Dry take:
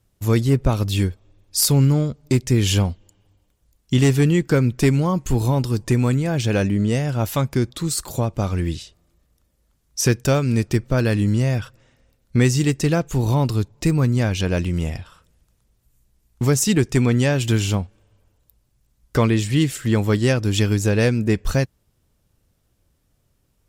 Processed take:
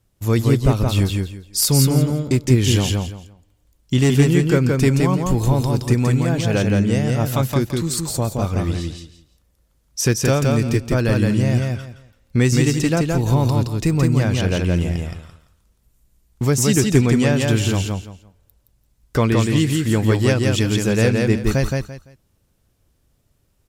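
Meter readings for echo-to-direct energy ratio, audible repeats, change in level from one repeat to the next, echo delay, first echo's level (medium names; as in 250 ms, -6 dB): -3.0 dB, 3, -13.0 dB, 170 ms, -3.0 dB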